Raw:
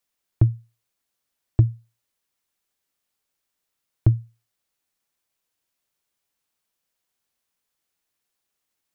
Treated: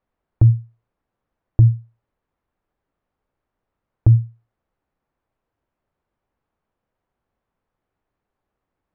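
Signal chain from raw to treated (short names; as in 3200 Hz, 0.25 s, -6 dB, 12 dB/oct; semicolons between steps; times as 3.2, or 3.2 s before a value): LPF 1100 Hz 12 dB/oct; low shelf 100 Hz +10 dB; maximiser +14.5 dB; gain -4.5 dB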